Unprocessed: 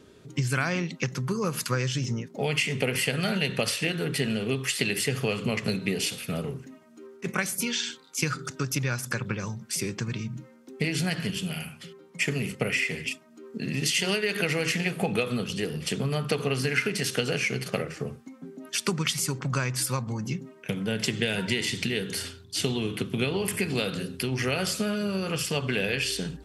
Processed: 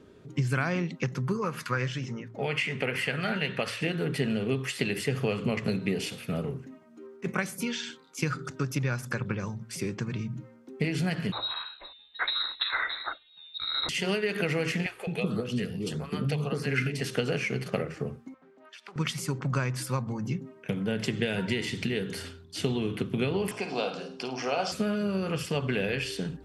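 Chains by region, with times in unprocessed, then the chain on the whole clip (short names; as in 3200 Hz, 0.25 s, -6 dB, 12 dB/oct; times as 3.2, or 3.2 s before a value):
1.37–3.81 bell 1700 Hz +8.5 dB 2 oct + flange 1.3 Hz, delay 1.6 ms, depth 7.6 ms, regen +80%
11.32–13.89 low shelf 190 Hz +9.5 dB + inverted band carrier 4000 Hz
14.86–17.01 LFO notch saw up 1.7 Hz 410–3400 Hz + bands offset in time highs, lows 0.21 s, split 480 Hz
18.34–18.96 three-band isolator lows -22 dB, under 580 Hz, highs -13 dB, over 4500 Hz + compressor 8:1, threshold -39 dBFS + Doppler distortion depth 0.29 ms
23.51–24.72 speaker cabinet 350–7400 Hz, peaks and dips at 360 Hz -3 dB, 730 Hz +10 dB, 1000 Hz +5 dB, 1900 Hz -9 dB, 5500 Hz +9 dB + flutter echo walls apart 9.1 m, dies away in 0.35 s
whole clip: high shelf 3000 Hz -11 dB; de-hum 57.05 Hz, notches 2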